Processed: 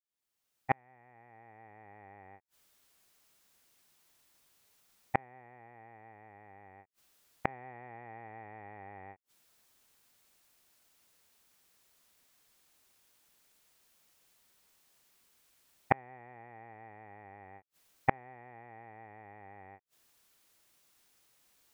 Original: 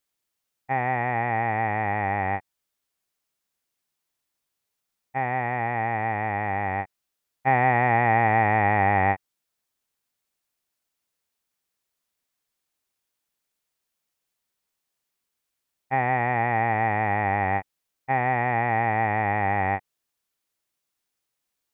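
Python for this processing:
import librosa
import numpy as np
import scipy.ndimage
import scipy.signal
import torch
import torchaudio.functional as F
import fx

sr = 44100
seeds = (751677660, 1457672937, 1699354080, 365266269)

y = fx.fade_in_head(x, sr, length_s=2.04)
y = fx.dynamic_eq(y, sr, hz=410.0, q=1.6, threshold_db=-39.0, ratio=4.0, max_db=7)
y = fx.gate_flip(y, sr, shuts_db=-23.0, range_db=-42)
y = F.gain(torch.from_numpy(y), 12.0).numpy()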